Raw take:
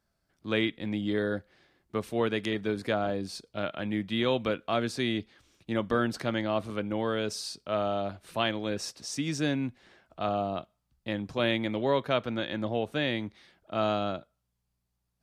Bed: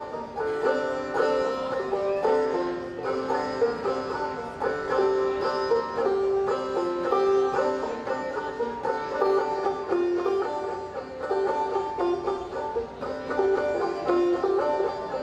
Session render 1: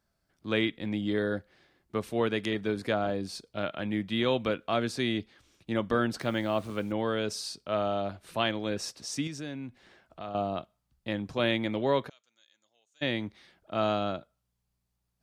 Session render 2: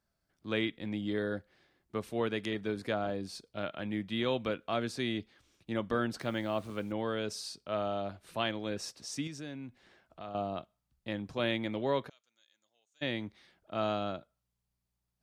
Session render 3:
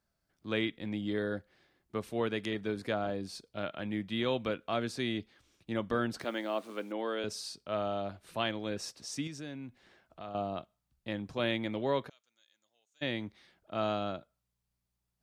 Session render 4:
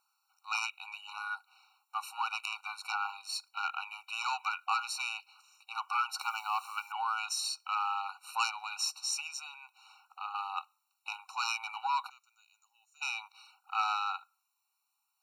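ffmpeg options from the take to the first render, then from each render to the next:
-filter_complex "[0:a]asettb=1/sr,asplit=3[s0][s1][s2];[s0]atrim=end=6.214[s3];[s1]atrim=start=6.21:end=6.92,asetpts=PTS-STARTPTS,afade=t=in:d=0.004:c=qsin,afade=t=out:st=0.706:d=0.004:c=qsin,acrusher=bits=8:mix=0:aa=0.5[s4];[s2]atrim=start=6.916[s5];[s3][s4]acrossfade=d=0.004:c1=hsin:c2=qsin[s6];[s6][s5]acrossfade=d=0.004:c1=qsin:c2=hsin,asettb=1/sr,asplit=3[s7][s8][s9];[s7]atrim=end=9.274[s10];[s8]atrim=start=9.27:end=10.35,asetpts=PTS-STARTPTS,afade=t=in:d=0.004:c=qsin,afade=t=out:st=1.076:d=0.004:c=qsin,acompressor=threshold=0.00794:ratio=2:attack=3.2:release=140:knee=1:detection=peak[s11];[s9]atrim=start=10.346[s12];[s10][s11]acrossfade=d=0.004:c1=hsin:c2=qsin[s13];[s13][s12]acrossfade=d=0.004:c1=qsin:c2=hsin,asplit=3[s14][s15][s16];[s14]afade=t=out:st=12.08:d=0.02[s17];[s15]bandpass=f=6800:t=q:w=11,afade=t=in:st=12.08:d=0.02,afade=t=out:st=13.01:d=0.02[s18];[s16]afade=t=in:st=13.01:d=0.02[s19];[s17][s18][s19]amix=inputs=3:normalize=0"
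-af "volume=0.596"
-filter_complex "[0:a]asettb=1/sr,asplit=3[s0][s1][s2];[s0]atrim=end=6.244[s3];[s1]atrim=start=6.24:end=7.24,asetpts=PTS-STARTPTS,afade=t=in:d=0.004:c=qsin,afade=t=out:st=0.996:d=0.004:c=qsin,highpass=f=250:w=0.5412,highpass=f=250:w=1.3066[s4];[s2]atrim=start=7.236[s5];[s3][s4]acrossfade=d=0.004:c1=hsin:c2=qsin[s6];[s6][s5]acrossfade=d=0.004:c1=qsin:c2=hsin"
-af "aeval=exprs='0.158*sin(PI/2*2.24*val(0)/0.158)':c=same,afftfilt=real='re*eq(mod(floor(b*sr/1024/750),2),1)':imag='im*eq(mod(floor(b*sr/1024/750),2),1)':win_size=1024:overlap=0.75"

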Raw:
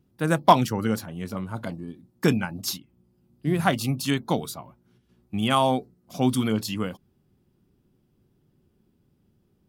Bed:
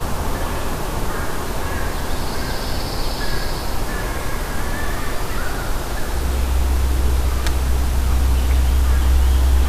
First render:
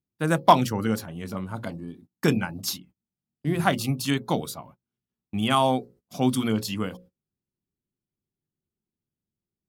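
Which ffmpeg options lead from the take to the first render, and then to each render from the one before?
-af "bandreject=f=60:t=h:w=6,bandreject=f=120:t=h:w=6,bandreject=f=180:t=h:w=6,bandreject=f=240:t=h:w=6,bandreject=f=300:t=h:w=6,bandreject=f=360:t=h:w=6,bandreject=f=420:t=h:w=6,bandreject=f=480:t=h:w=6,bandreject=f=540:t=h:w=6,agate=range=0.0631:threshold=0.00355:ratio=16:detection=peak"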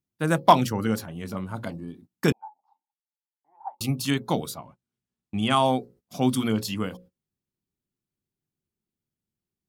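-filter_complex "[0:a]asettb=1/sr,asplit=3[s0][s1][s2];[s0]atrim=end=2.324[s3];[s1]atrim=start=2.32:end=3.81,asetpts=PTS-STARTPTS,afade=t=in:d=0.004:c=qsin,afade=t=out:st=1.486:d=0.004:c=qsin,asuperpass=centerf=860:order=4:qfactor=7.7[s4];[s2]atrim=start=3.806[s5];[s3][s4]acrossfade=d=0.004:c1=hsin:c2=qsin[s6];[s6][s5]acrossfade=d=0.004:c1=qsin:c2=hsin,asettb=1/sr,asplit=3[s7][s8][s9];[s7]atrim=end=4.594[s10];[s8]atrim=start=4.59:end=5.65,asetpts=PTS-STARTPTS,afade=t=in:d=0.004:c=qsin,afade=t=out:st=1.056:d=0.004:c=qsin,lowpass=f=10000:w=0.5412,lowpass=f=10000:w=1.3066[s11];[s9]atrim=start=5.646[s12];[s10][s11]acrossfade=d=0.004:c1=hsin:c2=qsin[s13];[s13][s12]acrossfade=d=0.004:c1=qsin:c2=hsin"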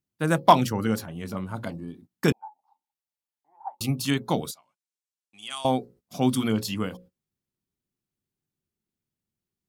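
-filter_complex "[0:a]asettb=1/sr,asplit=3[s0][s1][s2];[s0]atrim=end=4.514[s3];[s1]atrim=start=4.51:end=5.65,asetpts=PTS-STARTPTS,afade=t=in:d=0.004:c=qsin,afade=t=out:st=1.136:d=0.004:c=qsin,bandpass=f=7200:t=q:w=0.98[s4];[s2]atrim=start=5.646[s5];[s3][s4]acrossfade=d=0.004:c1=hsin:c2=qsin[s6];[s6][s5]acrossfade=d=0.004:c1=qsin:c2=hsin"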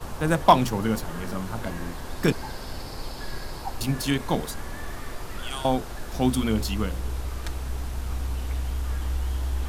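-filter_complex "[1:a]volume=0.237[s0];[0:a][s0]amix=inputs=2:normalize=0"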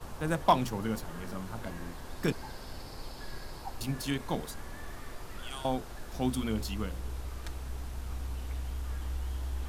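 -af "volume=0.398"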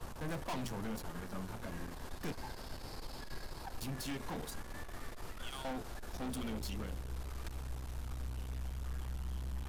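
-af "aeval=exprs='(tanh(70.8*val(0)+0.45)-tanh(0.45))/70.8':c=same"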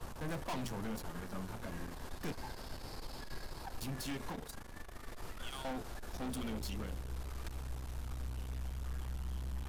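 -filter_complex "[0:a]asplit=3[s0][s1][s2];[s0]afade=t=out:st=4.32:d=0.02[s3];[s1]tremolo=f=26:d=0.75,afade=t=in:st=4.32:d=0.02,afade=t=out:st=5.08:d=0.02[s4];[s2]afade=t=in:st=5.08:d=0.02[s5];[s3][s4][s5]amix=inputs=3:normalize=0"

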